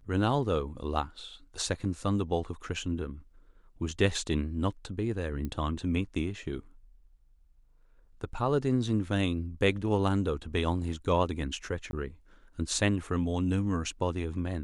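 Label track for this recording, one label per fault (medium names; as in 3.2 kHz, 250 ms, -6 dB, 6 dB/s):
5.450000	5.450000	pop -23 dBFS
11.910000	11.930000	dropout 21 ms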